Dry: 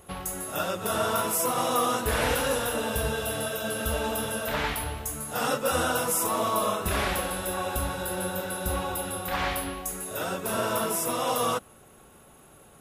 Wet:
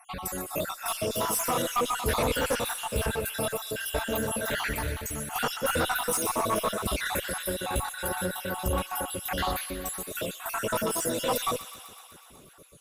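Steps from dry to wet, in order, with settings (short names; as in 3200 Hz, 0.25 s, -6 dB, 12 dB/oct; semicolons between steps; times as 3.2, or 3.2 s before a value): random spectral dropouts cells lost 59%; added harmonics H 5 -17 dB, 6 -21 dB, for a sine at -13.5 dBFS; thin delay 0.124 s, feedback 73%, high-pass 1600 Hz, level -11 dB; gain -1.5 dB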